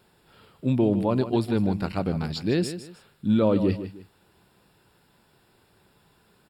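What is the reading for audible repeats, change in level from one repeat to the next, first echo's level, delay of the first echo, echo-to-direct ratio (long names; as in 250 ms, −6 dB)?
2, −10.5 dB, −11.5 dB, 154 ms, −11.0 dB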